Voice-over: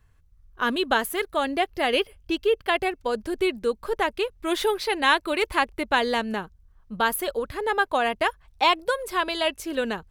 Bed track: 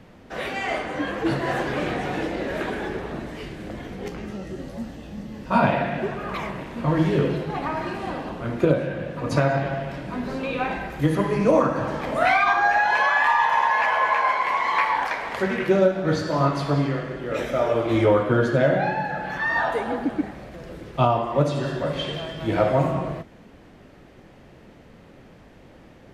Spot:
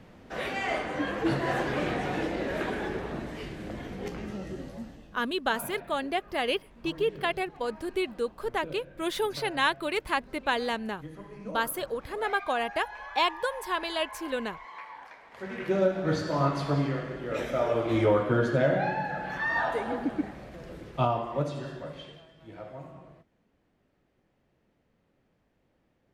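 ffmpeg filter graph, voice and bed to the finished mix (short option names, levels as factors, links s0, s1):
-filter_complex "[0:a]adelay=4550,volume=0.531[s0];[1:a]volume=5.01,afade=t=out:st=4.49:d=0.75:silence=0.112202,afade=t=in:st=15.31:d=0.63:silence=0.133352,afade=t=out:st=20.77:d=1.49:silence=0.125893[s1];[s0][s1]amix=inputs=2:normalize=0"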